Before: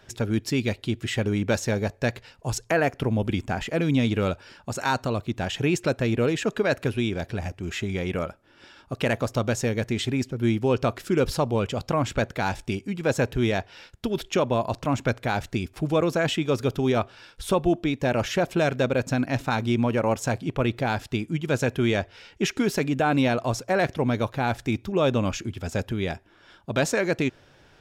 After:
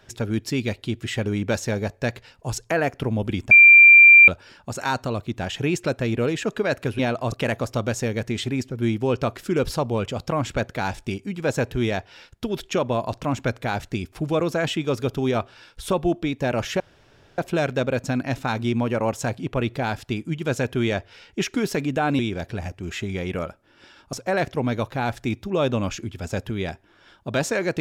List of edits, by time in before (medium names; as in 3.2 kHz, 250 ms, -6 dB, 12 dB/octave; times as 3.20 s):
3.51–4.28 s: bleep 2.37 kHz -6 dBFS
6.99–8.93 s: swap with 23.22–23.55 s
18.41 s: insert room tone 0.58 s